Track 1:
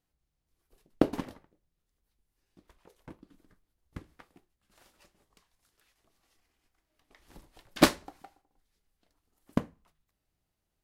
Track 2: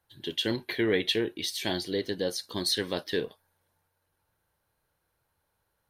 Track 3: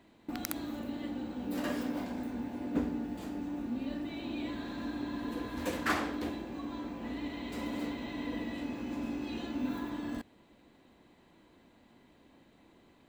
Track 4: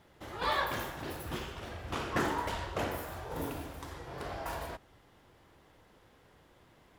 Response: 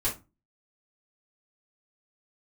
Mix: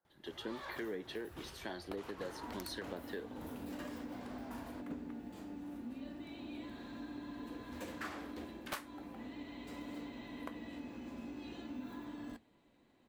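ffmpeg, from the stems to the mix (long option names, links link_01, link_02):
-filter_complex "[0:a]highpass=1100,equalizer=frequency=5100:width=0.61:gain=-12,aeval=exprs='0.075*(abs(mod(val(0)/0.075+3,4)-2)-1)':channel_layout=same,adelay=900,volume=-1dB[link_01];[1:a]highshelf=frequency=2000:width_type=q:width=1.5:gain=-8,acrossover=split=550[link_02][link_03];[link_02]aeval=exprs='val(0)*(1-0.5/2+0.5/2*cos(2*PI*2*n/s))':channel_layout=same[link_04];[link_03]aeval=exprs='val(0)*(1-0.5/2-0.5/2*cos(2*PI*2*n/s))':channel_layout=same[link_05];[link_04][link_05]amix=inputs=2:normalize=0,highpass=frequency=170:width=0.5412,highpass=frequency=170:width=1.3066,volume=-5dB[link_06];[2:a]flanger=delay=6.7:depth=5.3:regen=-68:speed=0.39:shape=sinusoidal,adelay=2150,volume=-4dB[link_07];[3:a]asoftclip=type=hard:threshold=-28dB,adelay=50,volume=-11dB[link_08];[link_01][link_06][link_07][link_08]amix=inputs=4:normalize=0,acompressor=threshold=-41dB:ratio=3"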